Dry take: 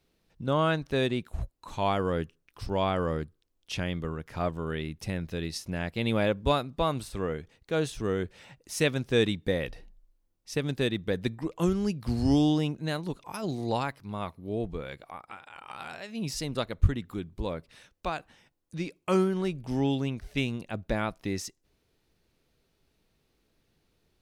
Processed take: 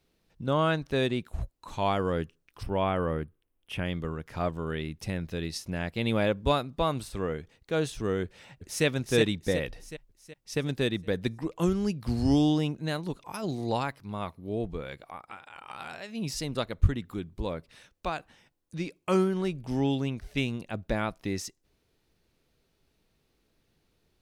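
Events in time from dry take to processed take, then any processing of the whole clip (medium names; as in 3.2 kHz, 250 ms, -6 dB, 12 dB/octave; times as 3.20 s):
2.63–3.85 s: high-order bell 5.3 kHz -14 dB 1.2 oct
8.24–8.85 s: echo throw 370 ms, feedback 50%, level -3.5 dB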